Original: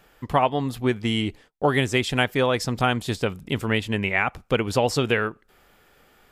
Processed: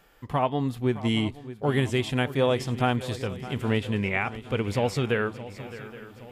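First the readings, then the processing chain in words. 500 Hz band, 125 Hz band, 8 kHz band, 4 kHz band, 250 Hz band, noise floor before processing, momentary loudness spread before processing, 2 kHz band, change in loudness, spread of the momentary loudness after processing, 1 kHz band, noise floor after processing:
-3.0 dB, -0.5 dB, -7.5 dB, -5.5 dB, -1.5 dB, -59 dBFS, 5 LU, -6.0 dB, -3.0 dB, 14 LU, -5.0 dB, -48 dBFS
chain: harmonic-percussive split percussive -9 dB; swung echo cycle 0.82 s, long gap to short 3:1, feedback 47%, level -15.5 dB

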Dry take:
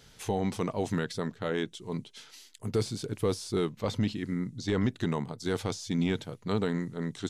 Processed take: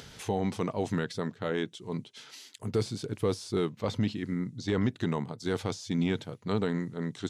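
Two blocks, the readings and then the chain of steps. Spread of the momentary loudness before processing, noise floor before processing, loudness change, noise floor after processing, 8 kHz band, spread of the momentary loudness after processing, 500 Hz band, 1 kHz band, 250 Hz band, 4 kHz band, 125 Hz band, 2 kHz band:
7 LU, -57 dBFS, 0.0 dB, -56 dBFS, -2.5 dB, 7 LU, 0.0 dB, 0.0 dB, 0.0 dB, -1.0 dB, 0.0 dB, 0.0 dB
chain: HPF 51 Hz; high shelf 8200 Hz -7 dB; upward compressor, threshold -40 dBFS

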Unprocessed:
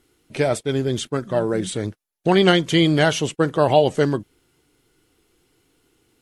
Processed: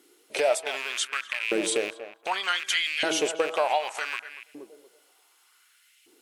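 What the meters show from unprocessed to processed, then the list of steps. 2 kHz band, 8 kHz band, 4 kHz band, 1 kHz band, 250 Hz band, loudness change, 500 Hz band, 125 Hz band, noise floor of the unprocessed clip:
-1.5 dB, +0.5 dB, -3.5 dB, -5.5 dB, -16.5 dB, -7.5 dB, -9.0 dB, -34.0 dB, -69 dBFS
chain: rattling part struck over -28 dBFS, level -19 dBFS; in parallel at +1 dB: limiter -11 dBFS, peak gain reduction 7.5 dB; on the sum: high shelf 4900 Hz +4.5 dB; de-hum 161.6 Hz, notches 10; on a send: tape echo 0.238 s, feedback 31%, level -10.5 dB, low-pass 1000 Hz; on the sum: compressor 5:1, threshold -17 dBFS, peak gain reduction 10.5 dB; LFO high-pass saw up 0.66 Hz 300–2500 Hz; low shelf 490 Hz -7.5 dB; gain -4.5 dB

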